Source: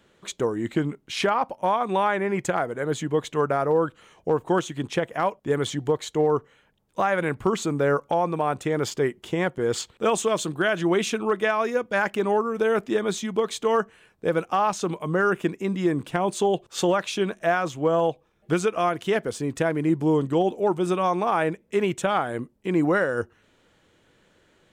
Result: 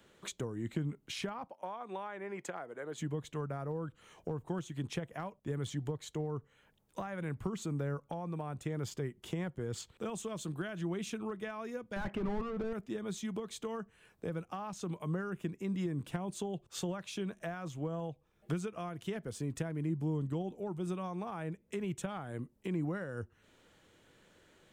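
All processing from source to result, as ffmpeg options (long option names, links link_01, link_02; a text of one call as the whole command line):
ffmpeg -i in.wav -filter_complex "[0:a]asettb=1/sr,asplit=3[link_01][link_02][link_03];[link_01]atrim=end=1.474[link_04];[link_02]atrim=start=1.47:end=2.98,asetpts=PTS-STARTPTS,afade=type=in:duration=0.004:curve=qsin,afade=type=out:start_time=1.506:duration=0.004:curve=qsin,highpass=360,highshelf=frequency=5600:gain=-9[link_05];[link_03]atrim=start=2.976[link_06];[link_04][link_05]acrossfade=duration=0.004:curve1=hsin:curve2=qsin[link_07];[link_07][link_06]acrossfade=duration=0.004:curve1=qsin:curve2=hsin,asettb=1/sr,asplit=3[link_08][link_09][link_10];[link_08]atrim=end=11.964[link_11];[link_09]atrim=start=11.96:end=12.73,asetpts=PTS-STARTPTS,afade=type=in:duration=0.004:curve=qsin,afade=type=out:start_time=0.766:duration=0.004:curve=qsin,aemphasis=mode=reproduction:type=50fm,asplit=2[link_12][link_13];[link_13]highpass=frequency=720:poles=1,volume=26dB,asoftclip=type=tanh:threshold=-11.5dB[link_14];[link_12][link_14]amix=inputs=2:normalize=0,lowpass=frequency=1100:poles=1,volume=-6dB[link_15];[link_10]atrim=start=12.726[link_16];[link_11][link_15]acrossfade=duration=0.004:curve1=hsin:curve2=qsin[link_17];[link_17][link_16]acrossfade=duration=0.004:curve1=qsin:curve2=hsin,highshelf=frequency=8000:gain=6,acrossover=split=180[link_18][link_19];[link_19]acompressor=threshold=-37dB:ratio=6[link_20];[link_18][link_20]amix=inputs=2:normalize=0,volume=-3.5dB" out.wav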